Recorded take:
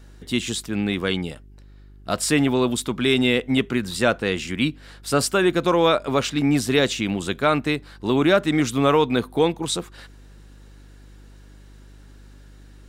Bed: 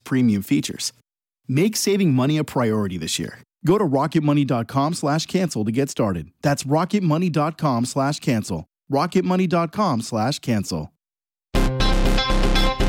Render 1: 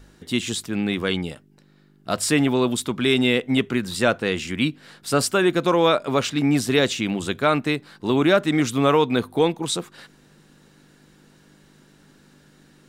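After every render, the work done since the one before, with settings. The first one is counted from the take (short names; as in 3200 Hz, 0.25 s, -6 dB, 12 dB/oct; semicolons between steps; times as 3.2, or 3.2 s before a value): de-hum 50 Hz, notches 2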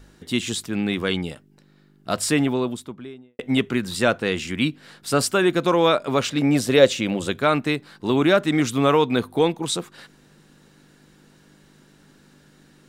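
2.16–3.39 studio fade out; 6.3–7.3 bell 540 Hz +12.5 dB 0.29 oct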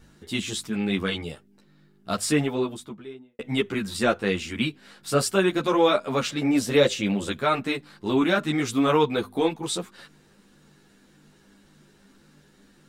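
ensemble effect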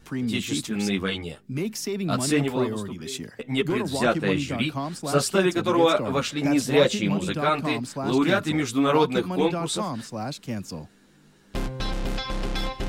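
add bed -10 dB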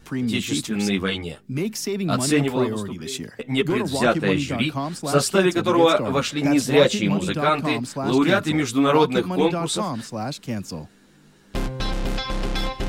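gain +3 dB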